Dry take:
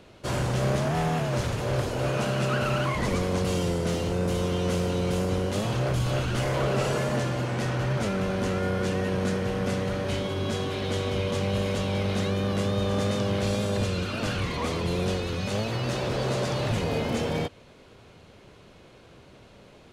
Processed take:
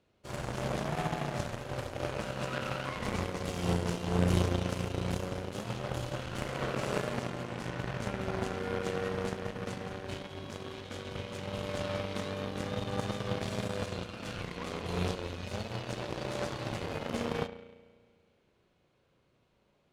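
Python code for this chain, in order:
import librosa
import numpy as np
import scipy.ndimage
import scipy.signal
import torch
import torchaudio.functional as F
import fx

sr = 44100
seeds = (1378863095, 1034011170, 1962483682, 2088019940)

y = fx.rev_spring(x, sr, rt60_s=2.2, pass_ms=(34,), chirp_ms=45, drr_db=3.0)
y = fx.cheby_harmonics(y, sr, harmonics=(3, 5, 7), levels_db=(-10, -30, -35), full_scale_db=-12.5)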